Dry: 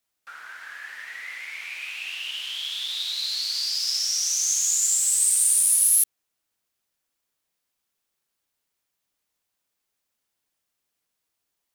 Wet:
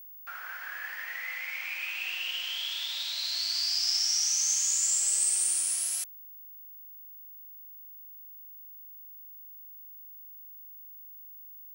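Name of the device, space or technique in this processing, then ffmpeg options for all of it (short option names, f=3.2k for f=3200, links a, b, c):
old television with a line whistle: -af "highpass=f=230:w=0.5412,highpass=f=230:w=1.3066,equalizer=f=250:t=q:w=4:g=-8,equalizer=f=740:t=q:w=4:g=5,equalizer=f=3.8k:t=q:w=4:g=-7,equalizer=f=6.8k:t=q:w=4:g=-4,lowpass=f=7.8k:w=0.5412,lowpass=f=7.8k:w=1.3066,aeval=exprs='val(0)+0.00562*sin(2*PI*15625*n/s)':c=same"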